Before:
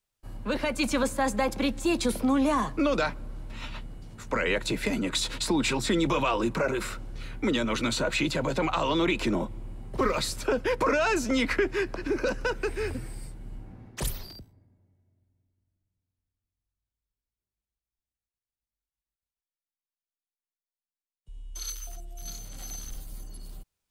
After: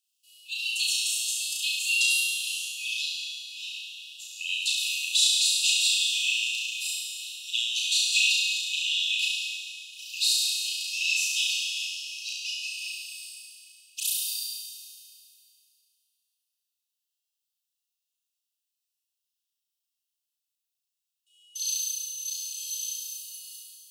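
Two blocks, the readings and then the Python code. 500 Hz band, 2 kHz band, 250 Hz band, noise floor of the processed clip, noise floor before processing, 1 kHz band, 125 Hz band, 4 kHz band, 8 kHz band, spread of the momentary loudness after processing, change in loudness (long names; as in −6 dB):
below −40 dB, +2.5 dB, below −40 dB, −85 dBFS, below −85 dBFS, below −40 dB, below −40 dB, +11.0 dB, +10.5 dB, 17 LU, +2.0 dB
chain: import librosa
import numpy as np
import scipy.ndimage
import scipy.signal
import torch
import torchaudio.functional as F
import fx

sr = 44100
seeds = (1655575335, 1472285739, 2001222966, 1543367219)

y = fx.brickwall_highpass(x, sr, low_hz=2500.0)
y = fx.room_flutter(y, sr, wall_m=5.9, rt60_s=0.99)
y = fx.rev_schroeder(y, sr, rt60_s=2.5, comb_ms=25, drr_db=2.0)
y = y * 10.0 ** (4.5 / 20.0)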